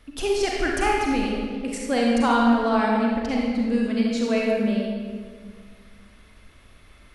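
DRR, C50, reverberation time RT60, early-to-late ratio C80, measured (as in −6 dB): −3.0 dB, −1.5 dB, 2.0 s, 1.0 dB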